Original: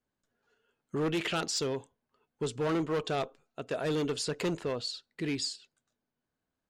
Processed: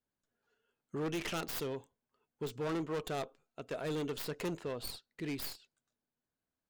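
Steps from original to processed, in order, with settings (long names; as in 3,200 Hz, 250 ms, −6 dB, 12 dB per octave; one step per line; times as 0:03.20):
stylus tracing distortion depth 0.22 ms
level −6 dB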